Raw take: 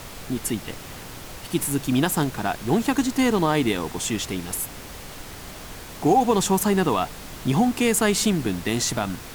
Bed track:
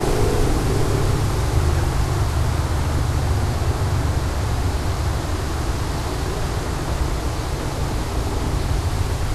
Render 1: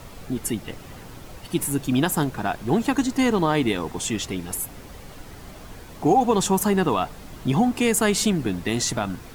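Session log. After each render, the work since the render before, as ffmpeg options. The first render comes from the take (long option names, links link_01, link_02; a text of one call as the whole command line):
ffmpeg -i in.wav -af "afftdn=noise_reduction=8:noise_floor=-39" out.wav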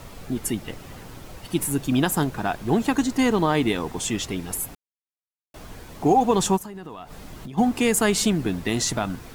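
ffmpeg -i in.wav -filter_complex "[0:a]asplit=3[link_01][link_02][link_03];[link_01]afade=type=out:start_time=6.56:duration=0.02[link_04];[link_02]acompressor=threshold=-33dB:ratio=16:attack=3.2:release=140:knee=1:detection=peak,afade=type=in:start_time=6.56:duration=0.02,afade=type=out:start_time=7.57:duration=0.02[link_05];[link_03]afade=type=in:start_time=7.57:duration=0.02[link_06];[link_04][link_05][link_06]amix=inputs=3:normalize=0,asplit=3[link_07][link_08][link_09];[link_07]atrim=end=4.75,asetpts=PTS-STARTPTS,afade=type=out:start_time=4.746:duration=0.004:curve=hsin[link_10];[link_08]atrim=start=4.75:end=5.54,asetpts=PTS-STARTPTS,volume=0[link_11];[link_09]atrim=start=5.54,asetpts=PTS-STARTPTS,afade=type=in:duration=0.004:curve=hsin[link_12];[link_10][link_11][link_12]concat=n=3:v=0:a=1" out.wav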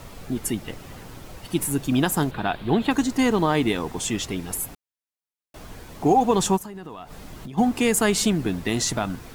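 ffmpeg -i in.wav -filter_complex "[0:a]asettb=1/sr,asplit=3[link_01][link_02][link_03];[link_01]atrim=end=2.314[link_04];[link_02]atrim=start=2.31:end=2.91,asetpts=PTS-STARTPTS,afade=type=in:duration=0.004:curve=qsin,afade=type=out:start_time=0.596:duration=0.004:curve=qsin,highshelf=frequency=4700:width_type=q:width=3:gain=-8[link_05];[link_03]atrim=start=2.906[link_06];[link_04][link_05]acrossfade=duration=0.004:curve1=hsin:curve2=qsin[link_07];[link_07][link_06]acrossfade=duration=0.004:curve1=qsin:curve2=hsin" out.wav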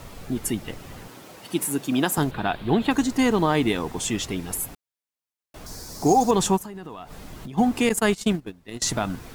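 ffmpeg -i in.wav -filter_complex "[0:a]asettb=1/sr,asplit=3[link_01][link_02][link_03];[link_01]atrim=end=1.084[link_04];[link_02]atrim=start=1.08:end=2.18,asetpts=PTS-STARTPTS,afade=type=in:duration=0.004:curve=qsin,afade=type=out:start_time=1.096:duration=0.004:curve=qsin,highpass=200[link_05];[link_03]atrim=start=2.176[link_06];[link_04][link_05]acrossfade=duration=0.004:curve1=hsin:curve2=qsin[link_07];[link_07][link_06]acrossfade=duration=0.004:curve1=qsin:curve2=hsin,asettb=1/sr,asplit=3[link_08][link_09][link_10];[link_08]atrim=end=5.664[link_11];[link_09]atrim=start=5.66:end=6.31,asetpts=PTS-STARTPTS,afade=type=in:duration=0.004:curve=qsin,afade=type=out:start_time=0.646:duration=0.004:curve=qsin,highshelf=frequency=3900:width_type=q:width=3:gain=9[link_12];[link_10]atrim=start=6.306[link_13];[link_11][link_12]acrossfade=duration=0.004:curve1=hsin:curve2=qsin[link_14];[link_14][link_13]acrossfade=duration=0.004:curve1=qsin:curve2=hsin,asettb=1/sr,asplit=3[link_15][link_16][link_17];[link_15]atrim=end=7.894[link_18];[link_16]atrim=start=7.89:end=8.82,asetpts=PTS-STARTPTS,afade=type=in:duration=0.004:curve=qsin,afade=type=out:start_time=0.926:duration=0.004:curve=qsin,agate=range=-23dB:threshold=-22dB:ratio=16:release=100:detection=peak[link_19];[link_17]atrim=start=8.816[link_20];[link_18][link_19]acrossfade=duration=0.004:curve1=hsin:curve2=qsin[link_21];[link_21][link_20]acrossfade=duration=0.004:curve1=qsin:curve2=hsin" out.wav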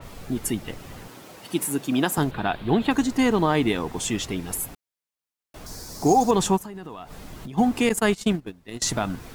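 ffmpeg -i in.wav -af "adynamicequalizer=threshold=0.01:dfrequency=4200:dqfactor=0.7:tfrequency=4200:tqfactor=0.7:attack=5:release=100:ratio=0.375:range=1.5:mode=cutabove:tftype=highshelf" out.wav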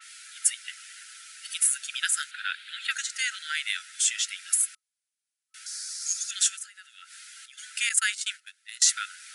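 ffmpeg -i in.wav -af "afftfilt=real='re*between(b*sr/4096,1300,11000)':imag='im*between(b*sr/4096,1300,11000)':win_size=4096:overlap=0.75,highshelf=frequency=6100:gain=10.5" out.wav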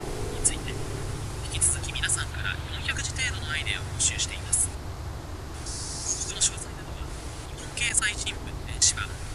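ffmpeg -i in.wav -i bed.wav -filter_complex "[1:a]volume=-14dB[link_01];[0:a][link_01]amix=inputs=2:normalize=0" out.wav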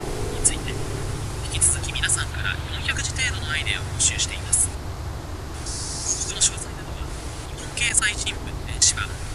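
ffmpeg -i in.wav -af "volume=4.5dB,alimiter=limit=-3dB:level=0:latency=1" out.wav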